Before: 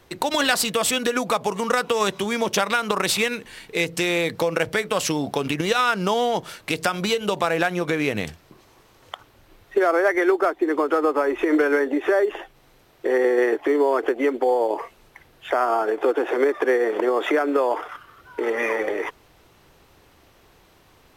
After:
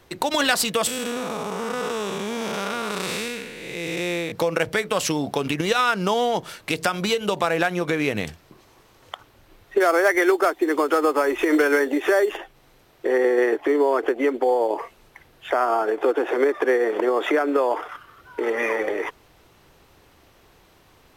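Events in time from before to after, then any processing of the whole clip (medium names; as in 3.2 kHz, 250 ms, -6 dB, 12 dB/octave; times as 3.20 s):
0.87–4.32 s: spectral blur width 325 ms
9.80–12.37 s: treble shelf 3.3 kHz +12 dB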